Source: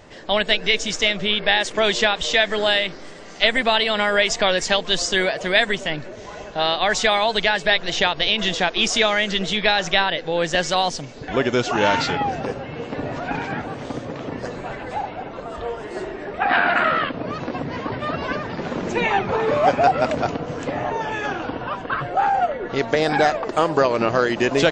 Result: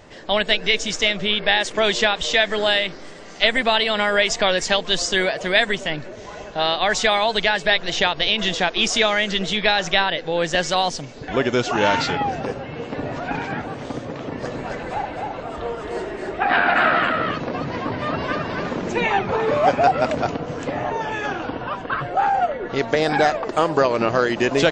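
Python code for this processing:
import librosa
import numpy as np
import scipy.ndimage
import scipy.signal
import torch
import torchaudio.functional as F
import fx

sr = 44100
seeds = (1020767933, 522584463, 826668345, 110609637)

y = fx.echo_single(x, sr, ms=267, db=-3.5, at=(14.13, 18.76))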